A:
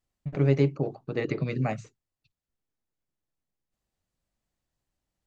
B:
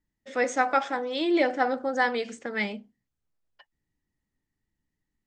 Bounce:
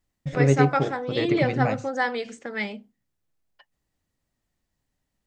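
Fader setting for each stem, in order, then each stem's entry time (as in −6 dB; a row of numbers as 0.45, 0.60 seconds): +3.0, −0.5 decibels; 0.00, 0.00 seconds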